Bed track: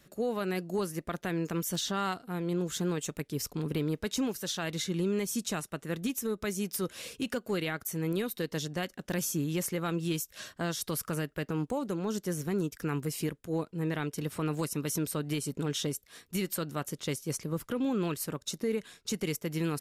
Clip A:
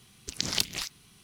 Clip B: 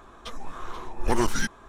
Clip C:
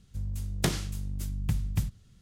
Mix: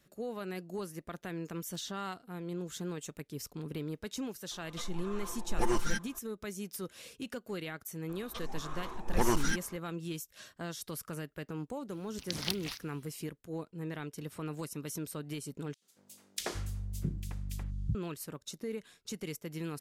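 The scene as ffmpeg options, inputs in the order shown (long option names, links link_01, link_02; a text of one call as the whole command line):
ffmpeg -i bed.wav -i cue0.wav -i cue1.wav -i cue2.wav -filter_complex "[2:a]asplit=2[link_01][link_02];[0:a]volume=-7.5dB[link_03];[link_01]aecho=1:1:5.8:0.87[link_04];[1:a]equalizer=frequency=7300:width_type=o:width=0.55:gain=-11[link_05];[3:a]acrossover=split=300|2400[link_06][link_07][link_08];[link_07]adelay=80[link_09];[link_06]adelay=660[link_10];[link_10][link_09][link_08]amix=inputs=3:normalize=0[link_11];[link_03]asplit=2[link_12][link_13];[link_12]atrim=end=15.744[link_14];[link_11]atrim=end=2.21,asetpts=PTS-STARTPTS,volume=-4.5dB[link_15];[link_13]atrim=start=17.946[link_16];[link_04]atrim=end=1.68,asetpts=PTS-STARTPTS,volume=-10dB,afade=type=in:duration=0.004:curve=hsin,afade=type=out:start_time=1.676:duration=0.004:curve=hsin,adelay=4510[link_17];[link_02]atrim=end=1.68,asetpts=PTS-STARTPTS,volume=-5dB,afade=type=in:duration=0.004:curve=hsin,afade=type=out:start_time=1.676:duration=0.004:curve=hsin,adelay=8090[link_18];[link_05]atrim=end=1.23,asetpts=PTS-STARTPTS,volume=-6dB,afade=type=in:duration=0.004:curve=hsin,afade=type=out:start_time=1.226:duration=0.004:curve=hsin,adelay=11900[link_19];[link_14][link_15]acrossfade=duration=0.004:curve1=hsin:curve2=hsin[link_20];[link_20][link_16]acrossfade=duration=0.004:curve1=hsin:curve2=hsin[link_21];[link_21][link_17][link_18][link_19]amix=inputs=4:normalize=0" out.wav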